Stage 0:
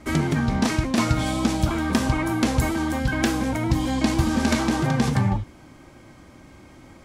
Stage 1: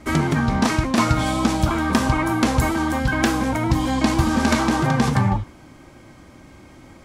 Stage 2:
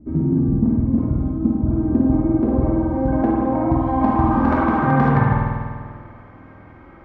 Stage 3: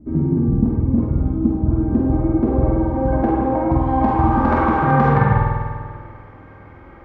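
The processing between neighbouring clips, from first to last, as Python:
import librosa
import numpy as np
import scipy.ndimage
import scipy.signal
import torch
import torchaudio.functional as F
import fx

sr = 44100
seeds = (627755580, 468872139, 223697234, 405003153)

y1 = fx.dynamic_eq(x, sr, hz=1100.0, q=1.3, threshold_db=-44.0, ratio=4.0, max_db=5)
y1 = y1 * librosa.db_to_amplitude(2.0)
y2 = fx.filter_sweep_lowpass(y1, sr, from_hz=260.0, to_hz=1500.0, start_s=1.23, end_s=5.19, q=1.5)
y2 = fx.rev_spring(y2, sr, rt60_s=1.8, pass_ms=(49,), chirp_ms=30, drr_db=-1.5)
y2 = y2 * librosa.db_to_amplitude(-2.5)
y3 = fx.doubler(y2, sr, ms=47.0, db=-5.5)
y3 = y3 * librosa.db_to_amplitude(1.0)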